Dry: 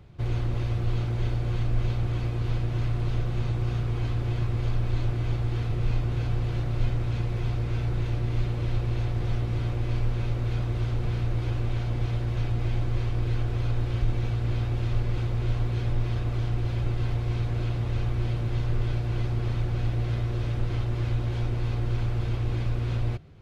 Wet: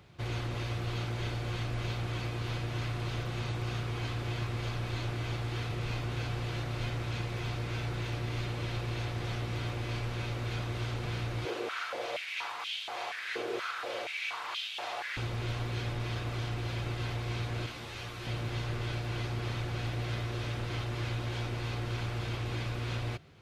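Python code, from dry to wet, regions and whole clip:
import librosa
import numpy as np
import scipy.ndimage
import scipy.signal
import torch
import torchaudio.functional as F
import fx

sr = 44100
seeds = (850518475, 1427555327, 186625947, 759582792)

y = fx.chain(x, sr, fx.room_flutter(wall_m=6.6, rt60_s=0.21),
    fx.filter_held_highpass(hz=4.2, low_hz=420.0, high_hz=3100.0), at=(11.45, 15.17))
y = fx.chain(y, sr, fx.tilt_eq(slope=1.5),
    fx.ensemble(), at=(17.66, 18.27))
y = fx.highpass(y, sr, hz=130.0, slope=6)
y = fx.tilt_shelf(y, sr, db=-4.5, hz=860.0)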